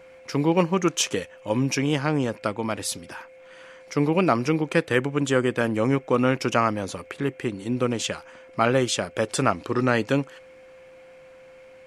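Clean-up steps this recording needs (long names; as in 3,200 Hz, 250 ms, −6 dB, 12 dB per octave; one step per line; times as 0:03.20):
notch filter 520 Hz, Q 30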